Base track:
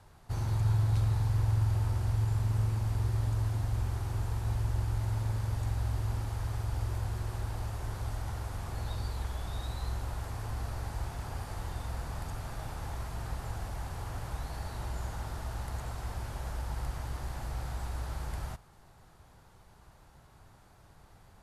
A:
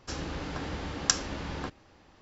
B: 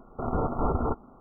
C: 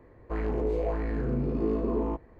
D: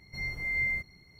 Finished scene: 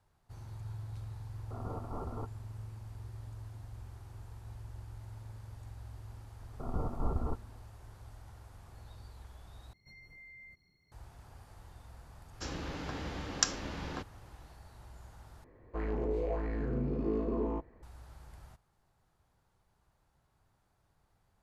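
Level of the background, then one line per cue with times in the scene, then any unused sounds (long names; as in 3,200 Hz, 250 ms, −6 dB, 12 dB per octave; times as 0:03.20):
base track −15.5 dB
0:01.32: mix in B −14.5 dB
0:06.41: mix in B −13 dB + low-shelf EQ 150 Hz +11 dB
0:09.73: overwrite with D −14.5 dB + brickwall limiter −34 dBFS
0:12.33: mix in A −4 dB
0:15.44: overwrite with C −5 dB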